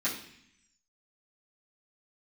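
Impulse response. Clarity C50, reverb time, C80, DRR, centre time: 7.5 dB, 0.65 s, 10.5 dB, -11.5 dB, 27 ms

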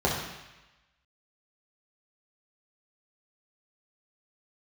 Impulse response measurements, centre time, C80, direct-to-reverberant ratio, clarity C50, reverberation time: 49 ms, 5.5 dB, -5.0 dB, 3.0 dB, 1.0 s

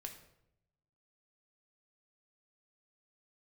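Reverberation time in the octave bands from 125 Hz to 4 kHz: 1.4 s, 1.0 s, 0.85 s, 0.70 s, 0.65 s, 0.55 s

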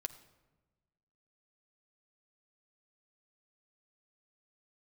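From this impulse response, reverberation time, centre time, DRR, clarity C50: 1.2 s, 7 ms, 7.0 dB, 14.0 dB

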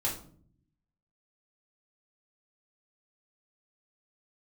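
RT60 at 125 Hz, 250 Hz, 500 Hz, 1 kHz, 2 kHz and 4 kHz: 1.2 s, 1.0 s, 0.65 s, 0.45 s, 0.35 s, 0.35 s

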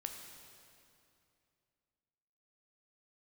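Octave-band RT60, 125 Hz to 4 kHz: 3.1 s, 2.9 s, 2.7 s, 2.5 s, 2.4 s, 2.2 s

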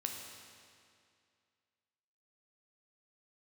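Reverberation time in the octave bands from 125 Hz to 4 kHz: 2.3 s, 2.3 s, 2.3 s, 2.3 s, 2.2 s, 2.1 s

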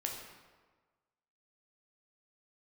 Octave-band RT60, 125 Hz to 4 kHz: 1.4 s, 1.3 s, 1.4 s, 1.4 s, 1.2 s, 0.90 s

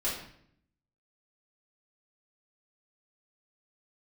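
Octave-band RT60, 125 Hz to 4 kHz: 0.95 s, 0.95 s, 0.70 s, 0.60 s, 0.60 s, 0.55 s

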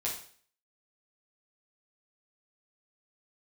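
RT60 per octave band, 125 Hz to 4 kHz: 0.50 s, 0.50 s, 0.50 s, 0.50 s, 0.50 s, 0.50 s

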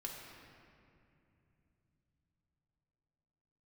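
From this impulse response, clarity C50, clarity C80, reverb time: 1.5 dB, 2.5 dB, 2.8 s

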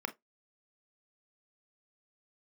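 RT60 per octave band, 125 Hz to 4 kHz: 0.15 s, 0.15 s, 0.15 s, 0.15 s, 0.15 s, 0.10 s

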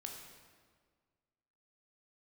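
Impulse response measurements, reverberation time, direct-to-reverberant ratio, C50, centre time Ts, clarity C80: 1.7 s, 1.0 dB, 3.5 dB, 52 ms, 5.5 dB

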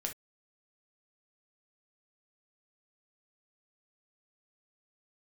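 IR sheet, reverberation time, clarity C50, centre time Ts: no single decay rate, 11.5 dB, 13 ms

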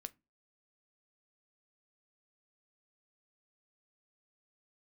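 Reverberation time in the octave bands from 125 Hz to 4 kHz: 0.35 s, 0.35 s, 0.25 s, 0.25 s, 0.20 s, 0.15 s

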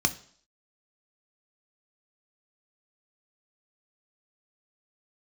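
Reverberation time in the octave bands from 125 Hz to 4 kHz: 0.45 s, 0.55 s, 0.55 s, 0.55 s, 0.50 s, 0.65 s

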